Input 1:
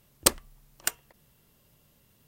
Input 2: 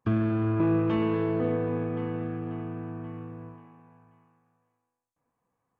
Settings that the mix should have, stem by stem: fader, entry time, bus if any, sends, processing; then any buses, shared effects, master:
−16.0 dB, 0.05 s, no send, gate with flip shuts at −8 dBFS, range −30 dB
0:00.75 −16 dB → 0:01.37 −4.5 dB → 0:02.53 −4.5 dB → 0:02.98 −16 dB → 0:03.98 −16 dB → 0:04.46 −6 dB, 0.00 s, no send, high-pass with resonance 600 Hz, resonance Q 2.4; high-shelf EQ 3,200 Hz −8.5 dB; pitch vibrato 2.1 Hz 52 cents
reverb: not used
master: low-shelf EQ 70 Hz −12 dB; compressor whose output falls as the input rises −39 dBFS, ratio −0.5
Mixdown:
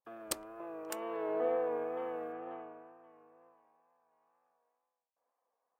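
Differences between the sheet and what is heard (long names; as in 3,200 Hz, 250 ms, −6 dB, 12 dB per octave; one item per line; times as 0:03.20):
stem 1: missing gate with flip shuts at −8 dBFS, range −30 dB
master: missing compressor whose output falls as the input rises −39 dBFS, ratio −0.5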